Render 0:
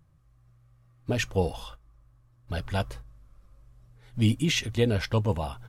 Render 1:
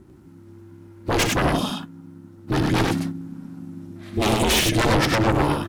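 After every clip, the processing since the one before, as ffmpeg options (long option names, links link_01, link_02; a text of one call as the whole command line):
ffmpeg -i in.wav -af "aeval=exprs='0.266*sin(PI/2*5.01*val(0)/0.266)':channel_layout=same,aecho=1:1:61.22|99.13:0.316|0.708,aeval=exprs='val(0)*sin(2*PI*220*n/s)':channel_layout=same,volume=-2.5dB" out.wav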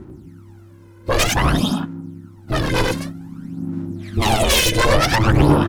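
ffmpeg -i in.wav -af "aphaser=in_gain=1:out_gain=1:delay=2:decay=0.67:speed=0.53:type=sinusoidal,volume=1.5dB" out.wav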